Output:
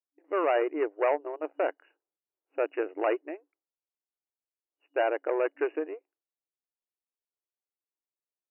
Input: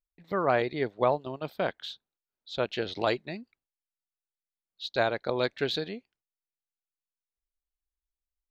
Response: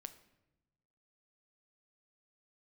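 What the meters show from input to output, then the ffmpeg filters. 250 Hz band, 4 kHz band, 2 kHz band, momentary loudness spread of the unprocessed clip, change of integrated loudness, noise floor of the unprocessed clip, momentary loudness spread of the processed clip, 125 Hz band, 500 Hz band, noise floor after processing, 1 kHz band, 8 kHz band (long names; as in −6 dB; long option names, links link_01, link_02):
−0.5 dB, below −15 dB, −2.5 dB, 15 LU, 0.0 dB, below −85 dBFS, 12 LU, below −40 dB, +1.0 dB, below −85 dBFS, −1.0 dB, can't be measured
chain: -af "aeval=exprs='0.282*sin(PI/2*2*val(0)/0.282)':channel_layout=same,adynamicsmooth=sensitivity=0.5:basefreq=910,afftfilt=real='re*between(b*sr/4096,280,2900)':imag='im*between(b*sr/4096,280,2900)':win_size=4096:overlap=0.75,volume=-6.5dB"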